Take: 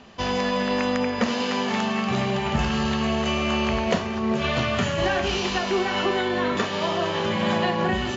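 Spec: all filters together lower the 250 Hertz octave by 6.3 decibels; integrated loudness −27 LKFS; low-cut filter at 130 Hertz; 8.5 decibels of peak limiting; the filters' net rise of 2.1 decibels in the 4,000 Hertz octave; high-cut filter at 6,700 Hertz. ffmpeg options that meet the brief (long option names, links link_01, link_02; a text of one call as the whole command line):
ffmpeg -i in.wav -af "highpass=130,lowpass=6700,equalizer=frequency=250:width_type=o:gain=-7.5,equalizer=frequency=4000:width_type=o:gain=3.5,volume=-0.5dB,alimiter=limit=-18dB:level=0:latency=1" out.wav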